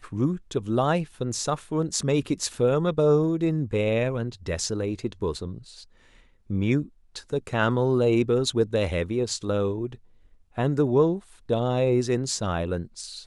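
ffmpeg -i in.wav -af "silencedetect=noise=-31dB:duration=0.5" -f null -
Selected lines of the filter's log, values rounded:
silence_start: 5.58
silence_end: 6.50 | silence_duration: 0.92
silence_start: 9.95
silence_end: 10.58 | silence_duration: 0.63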